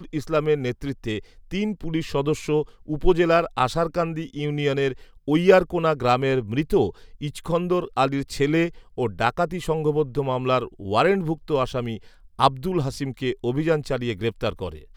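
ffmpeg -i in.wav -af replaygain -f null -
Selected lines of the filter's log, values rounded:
track_gain = +2.5 dB
track_peak = 0.525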